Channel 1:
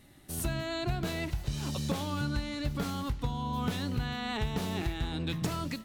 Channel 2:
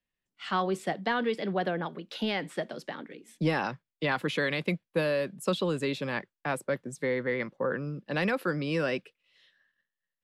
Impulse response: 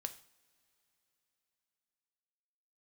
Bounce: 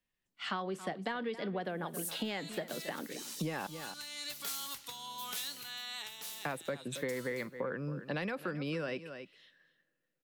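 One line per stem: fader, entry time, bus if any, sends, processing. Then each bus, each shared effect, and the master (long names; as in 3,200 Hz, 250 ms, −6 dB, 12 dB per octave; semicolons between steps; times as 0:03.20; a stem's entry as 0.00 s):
+1.5 dB, 1.65 s, send −6 dB, no echo send, first difference; automatic gain control gain up to 5 dB; low-shelf EQ 170 Hz −10 dB; automatic ducking −14 dB, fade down 1.10 s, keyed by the second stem
0.0 dB, 0.00 s, muted 0:03.67–0:06.38, send −17 dB, echo send −16.5 dB, no processing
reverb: on, pre-delay 3 ms
echo: single-tap delay 272 ms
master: downward compressor 6 to 1, threshold −34 dBFS, peak gain reduction 12.5 dB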